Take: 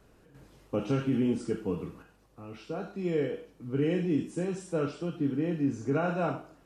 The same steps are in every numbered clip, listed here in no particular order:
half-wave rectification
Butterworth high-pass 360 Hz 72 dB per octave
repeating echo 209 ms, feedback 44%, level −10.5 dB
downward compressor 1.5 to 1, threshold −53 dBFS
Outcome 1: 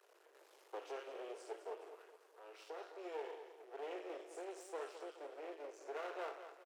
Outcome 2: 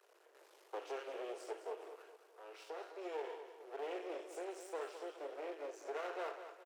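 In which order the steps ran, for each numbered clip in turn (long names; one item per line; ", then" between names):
downward compressor, then repeating echo, then half-wave rectification, then Butterworth high-pass
half-wave rectification, then Butterworth high-pass, then downward compressor, then repeating echo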